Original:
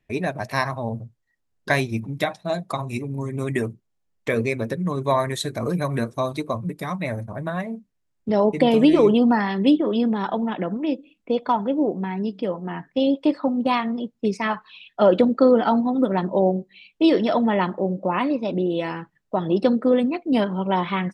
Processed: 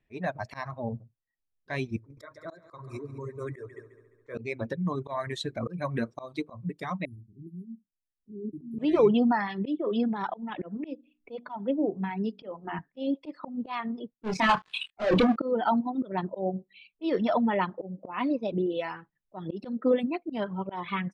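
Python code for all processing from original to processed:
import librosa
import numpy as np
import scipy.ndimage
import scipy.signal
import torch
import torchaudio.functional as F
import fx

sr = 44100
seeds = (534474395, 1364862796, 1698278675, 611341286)

y = fx.chain(x, sr, fx.fixed_phaser(hz=770.0, stages=6),
    fx.echo_heads(ms=70, heads='second and third', feedback_pct=47, wet_db=-10.5), at=(1.96, 4.35))
y = fx.chain(y, sr, fx.brickwall_bandstop(low_hz=410.0, high_hz=10000.0),
    fx.low_shelf(hz=420.0, db=-7.0), at=(7.05, 8.79))
y = fx.chain(y, sr, fx.hum_notches(base_hz=60, count=7),
    fx.band_squash(depth_pct=40), at=(10.57, 12.79))
y = fx.chain(y, sr, fx.level_steps(step_db=11),
    fx.leveller(passes=5),
    fx.doubler(ms=27.0, db=-6.5), at=(14.14, 15.36))
y = fx.dereverb_blind(y, sr, rt60_s=1.9)
y = scipy.signal.sosfilt(scipy.signal.bessel(2, 4000.0, 'lowpass', norm='mag', fs=sr, output='sos'), y)
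y = fx.auto_swell(y, sr, attack_ms=196.0)
y = y * librosa.db_to_amplitude(-3.5)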